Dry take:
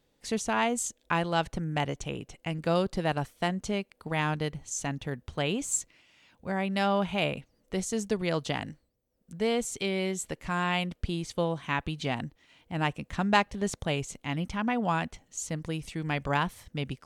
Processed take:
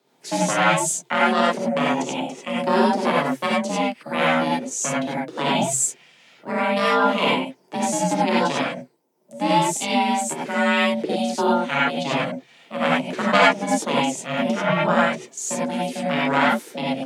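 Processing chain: ring modulator 270 Hz; frequency shift +130 Hz; non-linear reverb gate 0.12 s rising, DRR -5.5 dB; gain +6 dB

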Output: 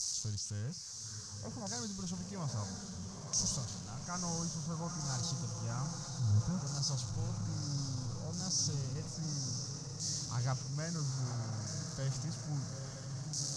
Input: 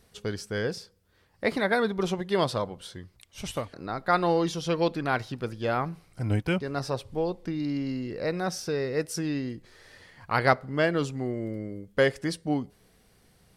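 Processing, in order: switching spikes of -18.5 dBFS; EQ curve 140 Hz 0 dB, 350 Hz -25 dB, 1100 Hz -16 dB, 2000 Hz -29 dB, 3300 Hz -28 dB, 6300 Hz +8 dB, 11000 Hz -4 dB; LFO low-pass saw down 0.6 Hz 870–5200 Hz; on a send: diffused feedback echo 0.928 s, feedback 65%, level -6 dB; on the sum: transient shaper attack -5 dB, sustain +2 dB; air absorption 58 m; gain -1.5 dB

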